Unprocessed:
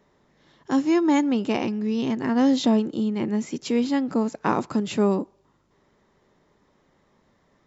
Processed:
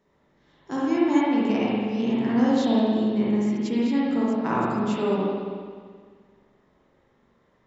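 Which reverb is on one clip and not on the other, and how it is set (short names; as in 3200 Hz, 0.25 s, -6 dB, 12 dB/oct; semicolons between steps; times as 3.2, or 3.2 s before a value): spring tank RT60 1.8 s, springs 43/60 ms, chirp 40 ms, DRR -6.5 dB; gain -7.5 dB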